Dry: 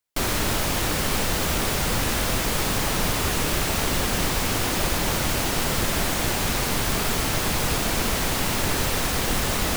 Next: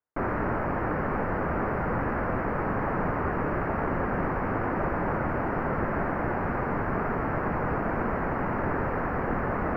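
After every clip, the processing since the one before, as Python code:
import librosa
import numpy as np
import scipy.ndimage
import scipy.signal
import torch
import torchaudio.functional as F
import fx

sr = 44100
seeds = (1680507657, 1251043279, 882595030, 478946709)

y = scipy.signal.sosfilt(scipy.signal.cheby2(4, 40, 3300.0, 'lowpass', fs=sr, output='sos'), x)
y = fx.low_shelf(y, sr, hz=82.0, db=-10.0)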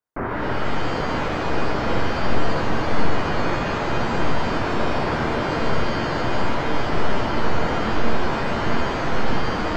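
y = fx.dereverb_blind(x, sr, rt60_s=0.52)
y = fx.echo_split(y, sr, split_hz=1300.0, low_ms=686, high_ms=134, feedback_pct=52, wet_db=-5)
y = fx.rev_shimmer(y, sr, seeds[0], rt60_s=1.5, semitones=7, shimmer_db=-2, drr_db=3.0)
y = F.gain(torch.from_numpy(y), 1.5).numpy()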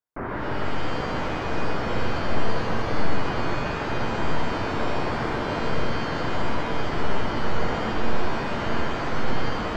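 y = x + 10.0 ** (-5.0 / 20.0) * np.pad(x, (int(123 * sr / 1000.0), 0))[:len(x)]
y = F.gain(torch.from_numpy(y), -5.0).numpy()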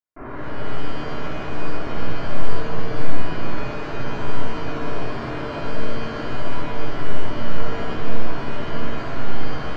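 y = fx.room_shoebox(x, sr, seeds[1], volume_m3=780.0, walls='mixed', distance_m=3.1)
y = F.gain(torch.from_numpy(y), -10.0).numpy()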